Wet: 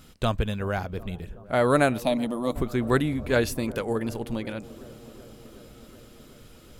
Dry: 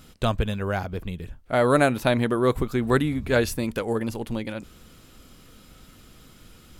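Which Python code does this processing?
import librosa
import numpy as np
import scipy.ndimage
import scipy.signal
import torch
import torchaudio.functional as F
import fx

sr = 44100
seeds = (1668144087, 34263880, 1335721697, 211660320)

y = fx.fixed_phaser(x, sr, hz=400.0, stages=6, at=(2.02, 2.55))
y = fx.echo_wet_lowpass(y, sr, ms=374, feedback_pct=77, hz=870.0, wet_db=-19.0)
y = F.gain(torch.from_numpy(y), -1.5).numpy()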